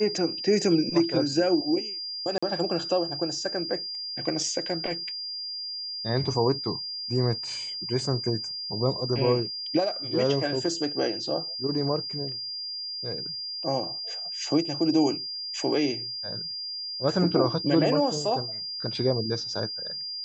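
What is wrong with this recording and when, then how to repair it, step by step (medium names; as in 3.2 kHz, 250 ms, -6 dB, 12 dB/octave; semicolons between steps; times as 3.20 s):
whine 4.8 kHz -32 dBFS
2.38–2.42 s: dropout 45 ms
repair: band-stop 4.8 kHz, Q 30; interpolate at 2.38 s, 45 ms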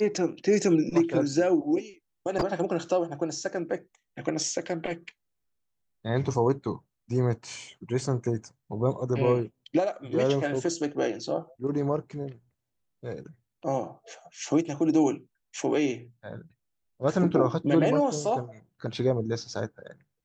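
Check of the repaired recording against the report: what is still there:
nothing left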